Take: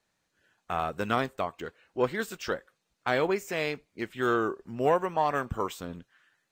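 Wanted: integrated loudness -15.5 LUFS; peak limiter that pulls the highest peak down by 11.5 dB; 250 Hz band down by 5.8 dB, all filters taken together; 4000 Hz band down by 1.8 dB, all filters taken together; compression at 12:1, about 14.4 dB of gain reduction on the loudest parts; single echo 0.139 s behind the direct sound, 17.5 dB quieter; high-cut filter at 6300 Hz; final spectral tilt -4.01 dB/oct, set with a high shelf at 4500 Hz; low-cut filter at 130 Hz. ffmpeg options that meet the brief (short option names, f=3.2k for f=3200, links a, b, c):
-af "highpass=130,lowpass=6.3k,equalizer=f=250:t=o:g=-8.5,equalizer=f=4k:t=o:g=-4,highshelf=f=4.5k:g=4.5,acompressor=threshold=-35dB:ratio=12,alimiter=level_in=7dB:limit=-24dB:level=0:latency=1,volume=-7dB,aecho=1:1:139:0.133,volume=29dB"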